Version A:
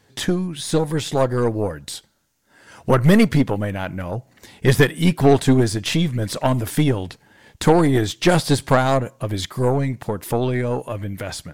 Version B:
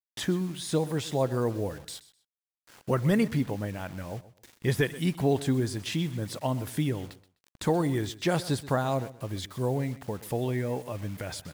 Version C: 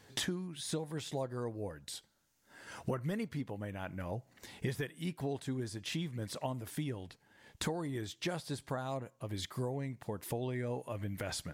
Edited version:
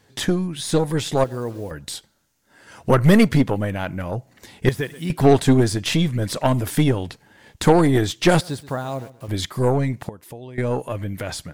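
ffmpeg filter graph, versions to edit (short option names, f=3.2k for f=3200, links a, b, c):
-filter_complex "[1:a]asplit=3[a][b][c];[0:a]asplit=5[d][e][f][g][h];[d]atrim=end=1.242[i];[a]atrim=start=1.238:end=1.712[j];[e]atrim=start=1.708:end=4.692[k];[b]atrim=start=4.688:end=5.102[l];[f]atrim=start=5.098:end=8.412[m];[c]atrim=start=8.408:end=9.282[n];[g]atrim=start=9.278:end=10.092[o];[2:a]atrim=start=10.088:end=10.582[p];[h]atrim=start=10.578[q];[i][j]acrossfade=d=0.004:c1=hsin:c2=hsin[r];[r][k]acrossfade=d=0.004:c1=hsin:c2=hsin[s];[s][l]acrossfade=d=0.004:c1=hsin:c2=hsin[t];[t][m]acrossfade=d=0.004:c1=hsin:c2=hsin[u];[u][n]acrossfade=d=0.004:c1=hsin:c2=hsin[v];[v][o]acrossfade=d=0.004:c1=hsin:c2=hsin[w];[w][p]acrossfade=d=0.004:c1=hsin:c2=hsin[x];[x][q]acrossfade=d=0.004:c1=hsin:c2=hsin"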